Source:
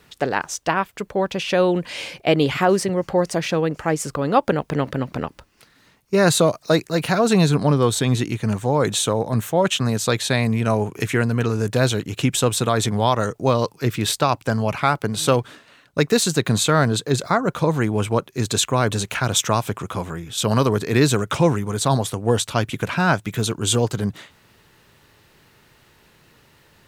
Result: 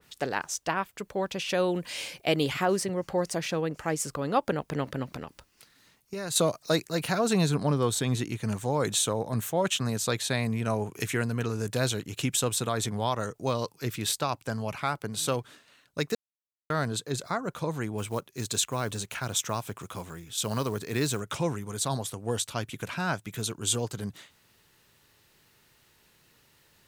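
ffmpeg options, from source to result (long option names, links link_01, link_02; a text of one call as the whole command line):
ffmpeg -i in.wav -filter_complex "[0:a]asettb=1/sr,asplit=3[link_01][link_02][link_03];[link_01]atrim=end=1.494[link_04];[link_02]atrim=start=1.49:end=2.53,asetpts=PTS-STARTPTS,afade=type=in:duration=0.004:curve=qsin,afade=type=out:start_time=1.036:duration=0.004:curve=qsin,highshelf=frequency=8300:gain=7[link_05];[link_03]atrim=start=2.526[link_06];[link_04][link_05]acrossfade=duration=0.004:curve1=hsin:curve2=qsin[link_07];[link_07][link_06]acrossfade=duration=0.004:curve1=qsin:curve2=hsin,asettb=1/sr,asplit=3[link_08][link_09][link_10];[link_08]atrim=end=5.124[link_11];[link_09]atrim=start=5.12:end=6.36,asetpts=PTS-STARTPTS,afade=type=in:duration=0.004:curve=qsin,afade=type=out:start_time=1.236:duration=0.004:curve=qsin,acompressor=threshold=-24dB:ratio=6:attack=3.2:release=140:knee=1:detection=peak[link_12];[link_10]atrim=start=6.356[link_13];[link_11][link_12]acrossfade=duration=0.004:curve1=hsin:curve2=qsin[link_14];[link_14][link_13]acrossfade=duration=0.004:curve1=qsin:curve2=hsin,asettb=1/sr,asplit=3[link_15][link_16][link_17];[link_15]atrim=end=17.984[link_18];[link_16]atrim=start=17.98:end=21.2,asetpts=PTS-STARTPTS,afade=type=in:duration=0.004:curve=qsin,afade=type=out:start_time=3.216:duration=0.004:curve=qsin,acrusher=bits=7:mode=log:mix=0:aa=0.000001[link_19];[link_17]atrim=start=21.196[link_20];[link_18][link_19]acrossfade=duration=0.004:curve1=hsin:curve2=qsin[link_21];[link_21][link_20]acrossfade=duration=0.004:curve1=qsin:curve2=hsin,asplit=3[link_22][link_23][link_24];[link_22]atrim=end=16.15,asetpts=PTS-STARTPTS,afade=type=out:start_time=16.146:duration=0.004:curve=hsin[link_25];[link_23]atrim=start=16.15:end=16.7,asetpts=PTS-STARTPTS,volume=0[link_26];[link_24]atrim=start=16.7,asetpts=PTS-STARTPTS,afade=type=in:duration=0.004:curve=hsin[link_27];[link_25][link_26][link_27]concat=n=3:v=0:a=1,highshelf=frequency=3500:gain=9.5,dynaudnorm=framelen=780:gausssize=17:maxgain=11.5dB,adynamicequalizer=threshold=0.0224:dfrequency=2300:dqfactor=0.7:tfrequency=2300:tqfactor=0.7:attack=5:release=100:ratio=0.375:range=2.5:mode=cutabove:tftype=highshelf,volume=-9dB" out.wav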